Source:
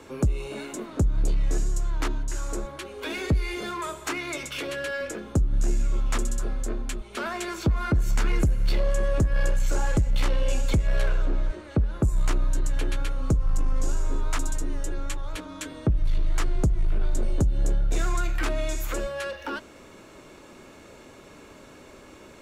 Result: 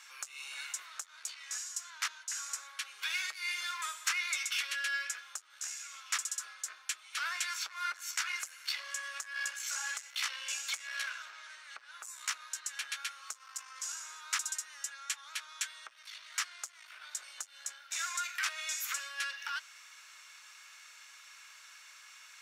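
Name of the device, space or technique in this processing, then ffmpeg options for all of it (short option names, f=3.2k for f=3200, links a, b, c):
headphones lying on a table: -af "highpass=f=1.4k:w=0.5412,highpass=f=1.4k:w=1.3066,equalizer=f=5.6k:t=o:w=0.43:g=6"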